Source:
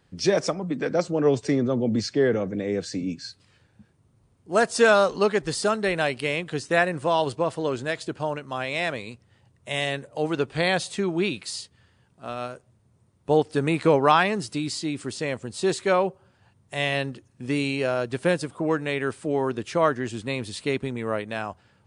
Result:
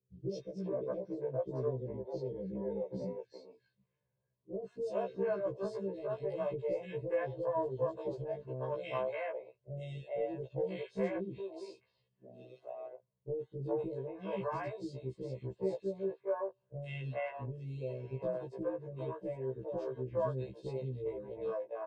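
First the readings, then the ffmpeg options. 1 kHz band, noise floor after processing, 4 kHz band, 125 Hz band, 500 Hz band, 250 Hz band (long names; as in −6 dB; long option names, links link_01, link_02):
−17.5 dB, −81 dBFS, −27.0 dB, −10.0 dB, −11.5 dB, −16.0 dB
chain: -filter_complex "[0:a]highpass=140,lowpass=7400,equalizer=frequency=1400:width_type=o:width=0.65:gain=-13,afwtdn=0.0398,acompressor=threshold=-30dB:ratio=6,aemphasis=mode=reproduction:type=75kf,aecho=1:1:1.9:0.78,acrossover=split=430|2400[link_01][link_02][link_03];[link_03]adelay=120[link_04];[link_02]adelay=410[link_05];[link_01][link_05][link_04]amix=inputs=3:normalize=0,afftfilt=real='re*1.73*eq(mod(b,3),0)':imag='im*1.73*eq(mod(b,3),0)':win_size=2048:overlap=0.75"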